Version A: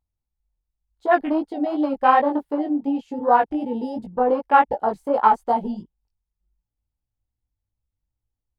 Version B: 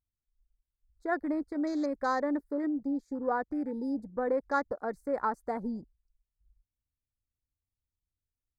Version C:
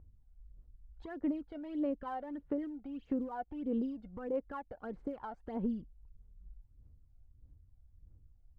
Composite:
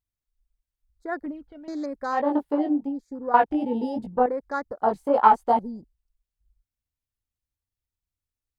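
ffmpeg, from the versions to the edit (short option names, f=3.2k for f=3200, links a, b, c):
-filter_complex "[0:a]asplit=3[a][b][c];[1:a]asplit=5[d][e][f][g][h];[d]atrim=end=1.262[i];[2:a]atrim=start=1.258:end=1.682[j];[e]atrim=start=1.678:end=2.34[k];[a]atrim=start=2.1:end=2.95[l];[f]atrim=start=2.71:end=3.342[m];[b]atrim=start=3.338:end=4.262[n];[g]atrim=start=4.258:end=4.822[o];[c]atrim=start=4.818:end=5.592[p];[h]atrim=start=5.588[q];[i][j]acrossfade=d=0.004:c1=hsin:c2=hsin[r];[r][k]acrossfade=d=0.004:c1=hsin:c2=hsin[s];[s][l]acrossfade=d=0.24:c1=tri:c2=tri[t];[t][m]acrossfade=d=0.24:c1=tri:c2=tri[u];[u][n]acrossfade=d=0.004:c1=hsin:c2=hsin[v];[v][o]acrossfade=d=0.004:c1=hsin:c2=hsin[w];[w][p]acrossfade=d=0.004:c1=hsin:c2=hsin[x];[x][q]acrossfade=d=0.004:c1=hsin:c2=hsin"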